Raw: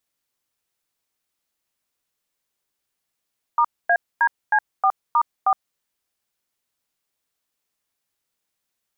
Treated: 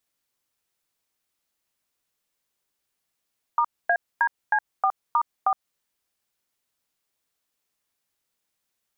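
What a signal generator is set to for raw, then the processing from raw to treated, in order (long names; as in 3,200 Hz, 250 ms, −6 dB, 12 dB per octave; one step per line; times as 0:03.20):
touch tones "*ADC4*4", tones 66 ms, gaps 248 ms, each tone −16.5 dBFS
downward compressor, threshold −19 dBFS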